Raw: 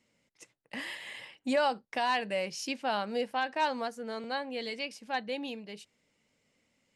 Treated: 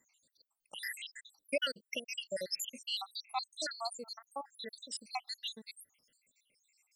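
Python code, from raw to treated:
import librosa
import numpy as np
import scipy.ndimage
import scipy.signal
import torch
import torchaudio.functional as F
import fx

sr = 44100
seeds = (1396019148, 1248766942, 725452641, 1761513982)

y = fx.spec_dropout(x, sr, seeds[0], share_pct=85)
y = scipy.signal.lfilter([1.0, -0.9], [1.0], y)
y = F.gain(torch.from_numpy(y), 14.5).numpy()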